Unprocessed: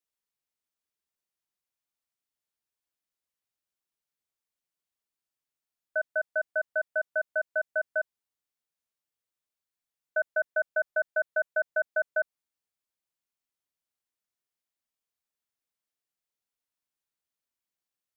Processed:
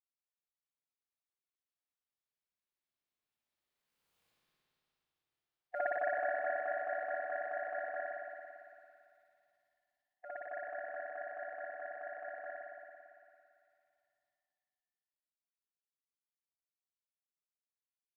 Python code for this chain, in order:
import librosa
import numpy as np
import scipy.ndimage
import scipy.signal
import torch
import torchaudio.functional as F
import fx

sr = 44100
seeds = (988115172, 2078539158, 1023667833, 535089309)

y = fx.doppler_pass(x, sr, speed_mps=24, closest_m=4.1, pass_at_s=4.2)
y = fx.rev_spring(y, sr, rt60_s=2.4, pass_ms=(56,), chirp_ms=75, drr_db=-9.5)
y = fx.formant_shift(y, sr, semitones=4)
y = y * 10.0 ** (8.0 / 20.0)